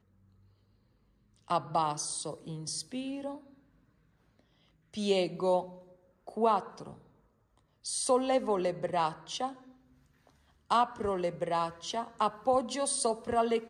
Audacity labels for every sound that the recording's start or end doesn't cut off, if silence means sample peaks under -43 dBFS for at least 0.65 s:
1.480000	3.380000	sound
4.940000	6.930000	sound
7.850000	9.540000	sound